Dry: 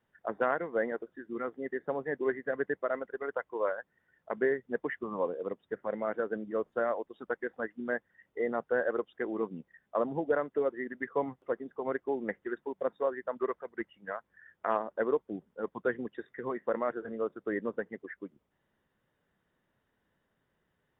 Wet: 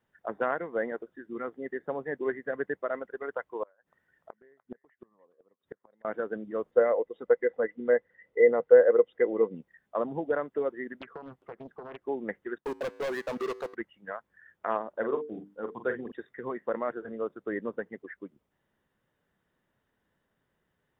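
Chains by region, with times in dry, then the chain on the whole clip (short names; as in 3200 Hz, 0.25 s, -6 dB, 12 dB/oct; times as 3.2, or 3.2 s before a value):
3.63–6.05 flipped gate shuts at -28 dBFS, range -32 dB + thin delay 0.296 s, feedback 30%, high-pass 1600 Hz, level -11.5 dB
6.71–9.55 air absorption 120 m + small resonant body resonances 490/2000 Hz, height 15 dB, ringing for 40 ms
11.01–12.05 notch 540 Hz + compressor 20:1, threshold -37 dBFS + Doppler distortion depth 0.74 ms
12.58–13.75 sample leveller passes 5 + compressor 4:1, threshold -25 dBFS + resonator 55 Hz, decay 1.4 s, harmonics odd, mix 50%
14.89–16.12 notches 50/100/150/200/250/300/350/400/450 Hz + doubler 44 ms -8 dB
whole clip: dry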